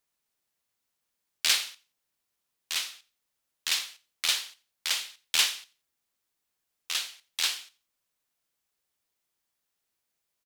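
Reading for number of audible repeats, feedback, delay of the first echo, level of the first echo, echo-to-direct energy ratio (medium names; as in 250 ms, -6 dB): 2, 26%, 87 ms, -21.5 dB, -21.0 dB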